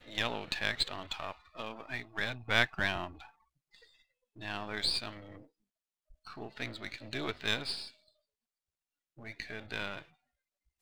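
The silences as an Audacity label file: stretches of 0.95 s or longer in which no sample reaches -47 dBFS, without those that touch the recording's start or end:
7.900000	9.180000	silence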